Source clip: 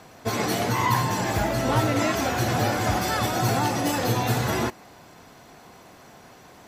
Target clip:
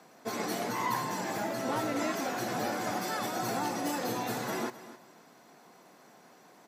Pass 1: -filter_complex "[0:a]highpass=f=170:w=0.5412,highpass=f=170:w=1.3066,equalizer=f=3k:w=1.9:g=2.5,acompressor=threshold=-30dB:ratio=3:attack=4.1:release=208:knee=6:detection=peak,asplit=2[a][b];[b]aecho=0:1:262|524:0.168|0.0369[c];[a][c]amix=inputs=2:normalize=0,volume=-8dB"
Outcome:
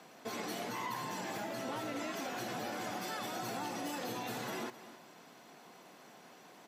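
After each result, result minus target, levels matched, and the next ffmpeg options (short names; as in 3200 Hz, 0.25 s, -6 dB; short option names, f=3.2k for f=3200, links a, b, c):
compressor: peak gain reduction +10 dB; 4000 Hz band +3.0 dB
-filter_complex "[0:a]highpass=f=170:w=0.5412,highpass=f=170:w=1.3066,equalizer=f=3k:w=1.9:g=2.5,asplit=2[a][b];[b]aecho=0:1:262|524:0.168|0.0369[c];[a][c]amix=inputs=2:normalize=0,volume=-8dB"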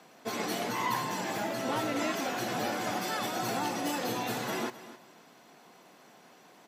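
4000 Hz band +2.5 dB
-filter_complex "[0:a]highpass=f=170:w=0.5412,highpass=f=170:w=1.3066,equalizer=f=3k:w=1.9:g=-3.5,asplit=2[a][b];[b]aecho=0:1:262|524:0.168|0.0369[c];[a][c]amix=inputs=2:normalize=0,volume=-8dB"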